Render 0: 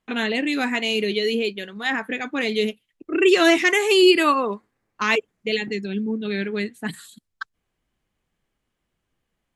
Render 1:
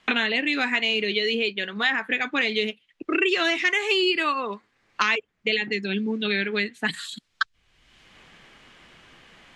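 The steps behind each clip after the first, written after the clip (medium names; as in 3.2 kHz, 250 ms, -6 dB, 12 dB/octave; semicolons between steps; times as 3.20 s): Bessel low-pass 2.7 kHz, order 2; tilt shelf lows -7.5 dB, about 1.3 kHz; three bands compressed up and down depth 100%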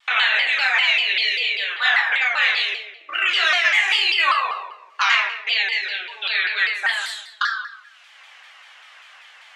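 inverse Chebyshev high-pass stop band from 230 Hz, stop band 60 dB; simulated room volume 440 m³, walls mixed, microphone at 2.4 m; vibrato with a chosen wave saw down 5.1 Hz, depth 160 cents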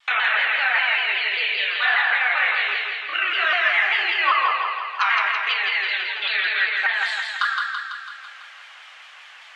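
low-pass that closes with the level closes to 2 kHz, closed at -16.5 dBFS; treble shelf 9.6 kHz -5 dB; thinning echo 166 ms, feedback 64%, high-pass 420 Hz, level -3.5 dB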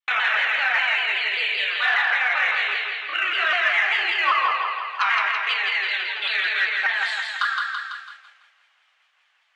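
expander -31 dBFS; in parallel at -12 dB: saturation -16.5 dBFS, distortion -15 dB; on the sum: trim -2.5 dB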